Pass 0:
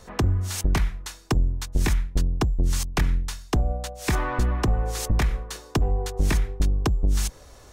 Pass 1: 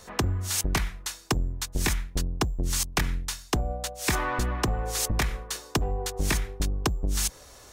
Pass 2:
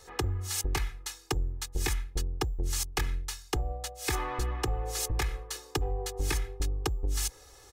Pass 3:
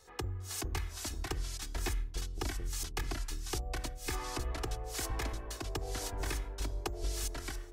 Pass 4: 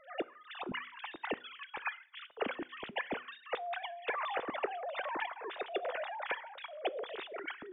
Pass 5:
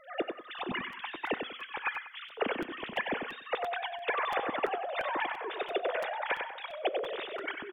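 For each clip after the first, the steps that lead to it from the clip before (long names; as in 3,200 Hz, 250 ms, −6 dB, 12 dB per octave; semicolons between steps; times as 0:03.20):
spectral tilt +1.5 dB per octave
comb filter 2.4 ms, depth 78%; level −7 dB
delay with pitch and tempo change per echo 402 ms, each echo −2 semitones, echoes 2; level −7.5 dB
three sine waves on the formant tracks; on a send at −19.5 dB: convolution reverb RT60 0.45 s, pre-delay 6 ms; on the sum: level −3.5 dB
repeating echo 95 ms, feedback 30%, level −6 dB; regular buffer underruns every 0.34 s, samples 256, repeat, from 0:00.58; level +4 dB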